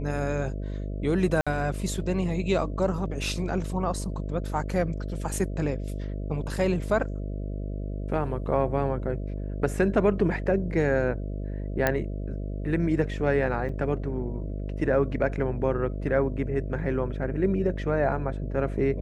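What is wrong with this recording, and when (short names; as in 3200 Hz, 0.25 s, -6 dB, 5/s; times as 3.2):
buzz 50 Hz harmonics 13 -32 dBFS
1.41–1.47 gap 56 ms
11.87 pop -9 dBFS
13.69 gap 3.2 ms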